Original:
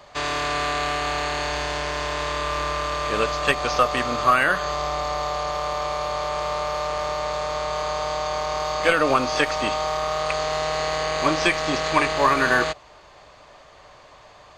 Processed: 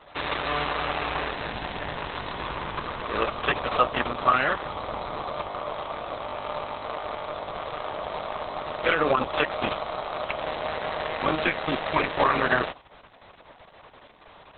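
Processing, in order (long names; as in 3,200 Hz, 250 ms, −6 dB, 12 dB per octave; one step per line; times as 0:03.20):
level −1 dB
Opus 6 kbit/s 48,000 Hz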